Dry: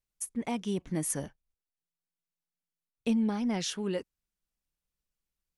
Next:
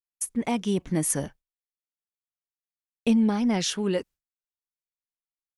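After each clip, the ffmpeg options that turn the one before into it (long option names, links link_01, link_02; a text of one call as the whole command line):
ffmpeg -i in.wav -af "agate=range=-33dB:threshold=-48dB:ratio=3:detection=peak,volume=6.5dB" out.wav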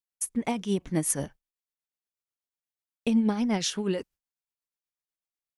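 ffmpeg -i in.wav -af "tremolo=f=8.2:d=0.52" out.wav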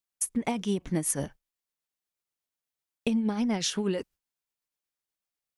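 ffmpeg -i in.wav -af "acompressor=threshold=-27dB:ratio=6,volume=3dB" out.wav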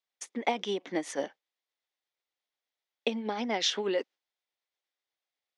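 ffmpeg -i in.wav -af "highpass=frequency=290:width=0.5412,highpass=frequency=290:width=1.3066,equalizer=frequency=540:width_type=q:width=4:gain=4,equalizer=frequency=770:width_type=q:width=4:gain=5,equalizer=frequency=2000:width_type=q:width=4:gain=6,equalizer=frequency=3500:width_type=q:width=4:gain=6,lowpass=frequency=5900:width=0.5412,lowpass=frequency=5900:width=1.3066" out.wav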